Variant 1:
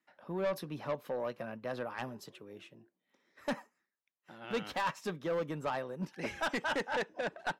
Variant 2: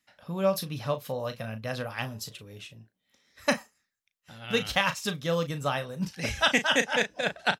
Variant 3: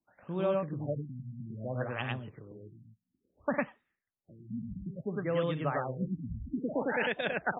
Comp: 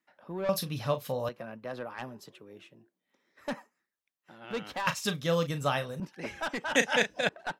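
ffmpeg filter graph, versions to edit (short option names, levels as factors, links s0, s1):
-filter_complex "[1:a]asplit=3[s0][s1][s2];[0:a]asplit=4[s3][s4][s5][s6];[s3]atrim=end=0.492[s7];[s0]atrim=start=0.488:end=1.292[s8];[s4]atrim=start=1.288:end=4.872[s9];[s1]atrim=start=4.868:end=6.002[s10];[s5]atrim=start=5.998:end=6.752[s11];[s2]atrim=start=6.748:end=7.292[s12];[s6]atrim=start=7.288[s13];[s7][s8]acrossfade=d=0.004:c1=hsin:c2=hsin[s14];[s14][s9]acrossfade=d=0.004:c1=hsin:c2=hsin[s15];[s15][s10]acrossfade=d=0.004:c1=hsin:c2=hsin[s16];[s16][s11]acrossfade=d=0.004:c1=hsin:c2=hsin[s17];[s17][s12]acrossfade=d=0.004:c1=hsin:c2=hsin[s18];[s18][s13]acrossfade=d=0.004:c1=hsin:c2=hsin"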